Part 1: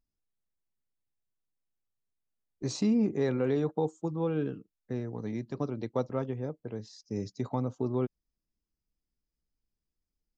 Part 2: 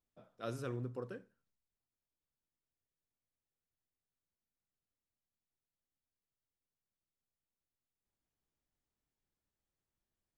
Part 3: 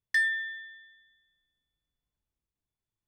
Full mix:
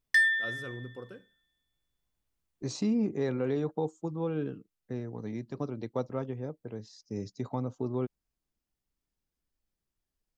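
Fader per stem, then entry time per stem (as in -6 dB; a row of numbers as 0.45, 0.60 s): -2.0, -1.0, +2.5 dB; 0.00, 0.00, 0.00 s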